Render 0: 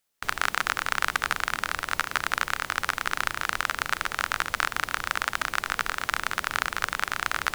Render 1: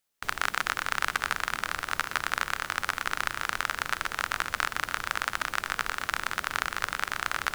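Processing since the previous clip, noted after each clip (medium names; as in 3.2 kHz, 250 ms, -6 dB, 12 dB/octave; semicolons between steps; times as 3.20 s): two-band feedback delay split 1.1 kHz, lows 742 ms, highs 124 ms, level -16 dB; trim -2.5 dB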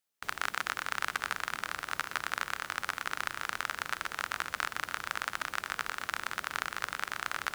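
high-pass 90 Hz 6 dB/octave; trim -5 dB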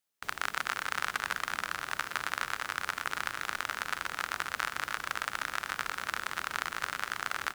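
delay 278 ms -6.5 dB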